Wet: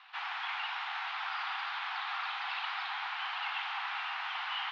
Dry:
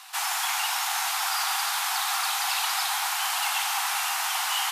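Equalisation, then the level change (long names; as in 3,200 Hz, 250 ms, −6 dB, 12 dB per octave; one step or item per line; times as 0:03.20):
high-pass filter 1,000 Hz 12 dB per octave
low-pass filter 3,600 Hz 24 dB per octave
high-frequency loss of the air 170 metres
−4.5 dB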